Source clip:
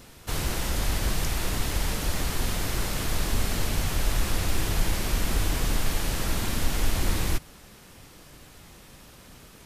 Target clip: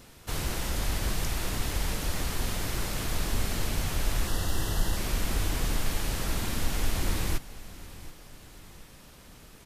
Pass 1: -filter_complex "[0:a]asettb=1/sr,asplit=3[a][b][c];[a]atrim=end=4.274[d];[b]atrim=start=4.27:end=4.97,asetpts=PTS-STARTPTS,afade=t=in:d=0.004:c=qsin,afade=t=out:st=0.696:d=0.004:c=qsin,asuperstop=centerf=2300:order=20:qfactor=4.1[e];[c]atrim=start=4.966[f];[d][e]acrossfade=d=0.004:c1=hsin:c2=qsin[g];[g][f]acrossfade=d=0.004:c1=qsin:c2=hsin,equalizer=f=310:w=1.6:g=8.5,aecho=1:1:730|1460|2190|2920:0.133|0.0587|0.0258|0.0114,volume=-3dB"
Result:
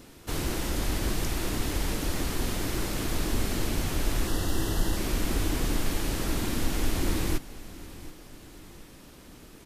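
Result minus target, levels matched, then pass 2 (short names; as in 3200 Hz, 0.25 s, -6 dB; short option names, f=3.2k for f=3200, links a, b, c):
250 Hz band +4.5 dB
-filter_complex "[0:a]asettb=1/sr,asplit=3[a][b][c];[a]atrim=end=4.274[d];[b]atrim=start=4.27:end=4.97,asetpts=PTS-STARTPTS,afade=t=in:d=0.004:c=qsin,afade=t=out:st=0.696:d=0.004:c=qsin,asuperstop=centerf=2300:order=20:qfactor=4.1[e];[c]atrim=start=4.966[f];[d][e]acrossfade=d=0.004:c1=hsin:c2=qsin[g];[g][f]acrossfade=d=0.004:c1=qsin:c2=hsin,aecho=1:1:730|1460|2190|2920:0.133|0.0587|0.0258|0.0114,volume=-3dB"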